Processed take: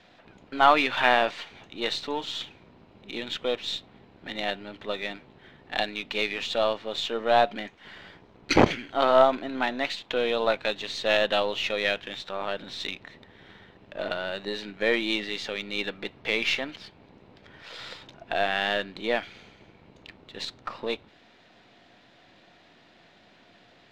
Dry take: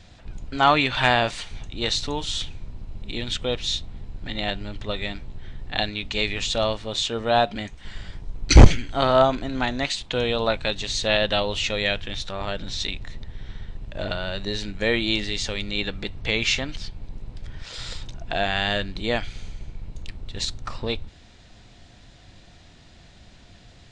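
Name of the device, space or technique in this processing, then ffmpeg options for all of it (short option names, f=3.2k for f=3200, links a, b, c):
crystal radio: -af "highpass=280,lowpass=3.1k,aeval=exprs='if(lt(val(0),0),0.708*val(0),val(0))':c=same,volume=1dB"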